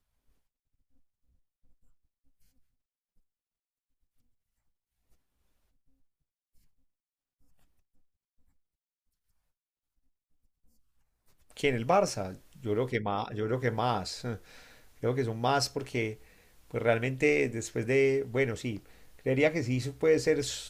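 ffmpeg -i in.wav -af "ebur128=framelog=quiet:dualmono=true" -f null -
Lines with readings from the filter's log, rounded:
Integrated loudness:
  I:         -26.7 LUFS
  Threshold: -37.3 LUFS
Loudness range:
  LRA:         5.0 LU
  Threshold: -48.3 LUFS
  LRA low:   -31.1 LUFS
  LRA high:  -26.0 LUFS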